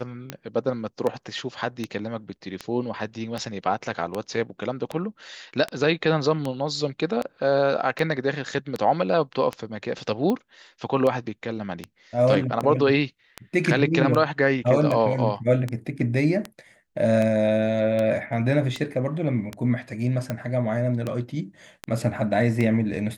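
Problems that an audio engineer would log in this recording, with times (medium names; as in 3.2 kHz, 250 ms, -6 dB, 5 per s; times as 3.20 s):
tick 78 rpm -14 dBFS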